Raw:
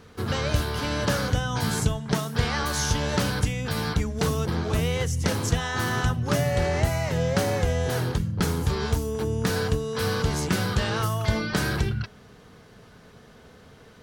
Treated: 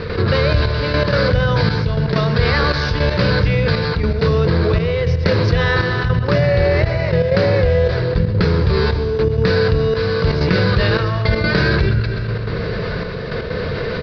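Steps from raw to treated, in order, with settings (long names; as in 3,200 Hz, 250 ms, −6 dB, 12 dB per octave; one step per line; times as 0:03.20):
thirty-one-band graphic EQ 250 Hz −12 dB, 500 Hz +5 dB, 800 Hz −12 dB, 1,250 Hz −4 dB, 3,150 Hz −9 dB
on a send at −12.5 dB: convolution reverb RT60 1.8 s, pre-delay 93 ms
on the sum: gate pattern ".xxxxxx...x" 160 BPM −12 dB
Butterworth low-pass 4,900 Hz 72 dB per octave
repeating echo 125 ms, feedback 55%, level −19 dB
envelope flattener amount 70%
level +6 dB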